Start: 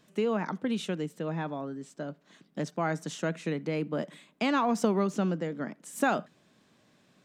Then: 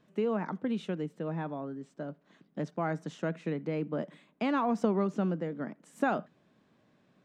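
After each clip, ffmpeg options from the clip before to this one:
-af "lowpass=f=1.6k:p=1,volume=-1.5dB"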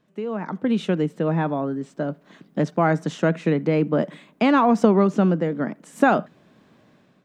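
-af "dynaudnorm=f=240:g=5:m=13dB"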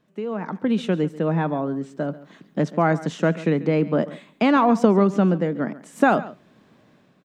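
-af "aecho=1:1:139:0.133"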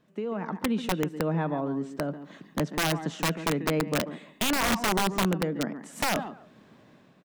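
-filter_complex "[0:a]acompressor=threshold=-35dB:ratio=1.5,asplit=2[a][b];[b]adelay=140,highpass=300,lowpass=3.4k,asoftclip=type=hard:threshold=-21.5dB,volume=-11dB[c];[a][c]amix=inputs=2:normalize=0,aeval=exprs='(mod(8.41*val(0)+1,2)-1)/8.41':c=same"

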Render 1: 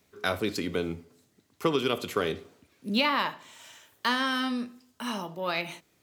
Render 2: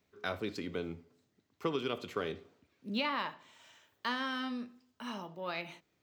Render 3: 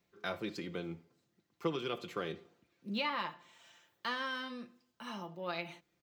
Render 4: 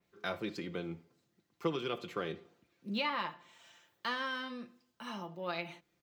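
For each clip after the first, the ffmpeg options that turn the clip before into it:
-af "equalizer=f=11k:t=o:w=1:g=-14,volume=-8dB"
-af "aecho=1:1:5.8:0.53,volume=-2.5dB"
-af "adynamicequalizer=threshold=0.00178:dfrequency=3900:dqfactor=0.7:tfrequency=3900:tqfactor=0.7:attack=5:release=100:ratio=0.375:range=2.5:mode=cutabove:tftype=highshelf,volume=1dB"

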